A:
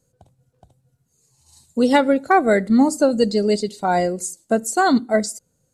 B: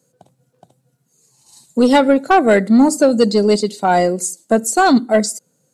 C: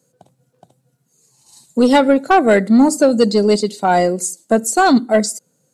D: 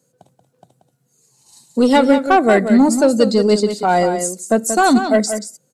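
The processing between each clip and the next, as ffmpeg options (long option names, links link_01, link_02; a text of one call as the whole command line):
ffmpeg -i in.wav -af "highpass=frequency=150:width=0.5412,highpass=frequency=150:width=1.3066,acontrast=79,volume=-1dB" out.wav
ffmpeg -i in.wav -af anull out.wav
ffmpeg -i in.wav -af "aecho=1:1:182:0.376,volume=-1dB" out.wav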